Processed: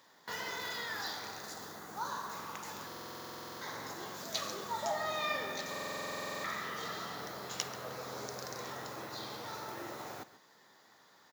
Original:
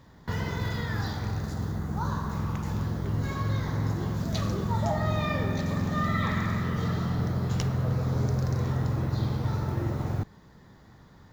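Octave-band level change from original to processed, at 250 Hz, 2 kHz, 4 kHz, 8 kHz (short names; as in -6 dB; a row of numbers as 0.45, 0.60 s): -19.0 dB, -3.0 dB, +1.0 dB, n/a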